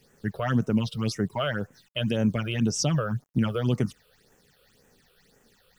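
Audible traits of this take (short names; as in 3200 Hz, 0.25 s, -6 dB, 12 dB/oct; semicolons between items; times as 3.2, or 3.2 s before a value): a quantiser's noise floor 10-bit, dither none; phasing stages 8, 1.9 Hz, lowest notch 240–4300 Hz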